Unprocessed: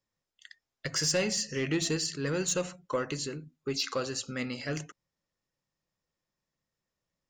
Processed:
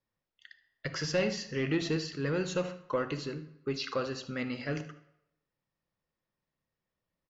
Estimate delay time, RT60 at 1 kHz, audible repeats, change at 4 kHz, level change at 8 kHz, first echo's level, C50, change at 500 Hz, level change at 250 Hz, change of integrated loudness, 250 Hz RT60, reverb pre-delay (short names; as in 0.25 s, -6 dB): 75 ms, 0.85 s, 1, -6.0 dB, -13.5 dB, -18.5 dB, 12.5 dB, 0.0 dB, +0.5 dB, -2.0 dB, 0.75 s, 29 ms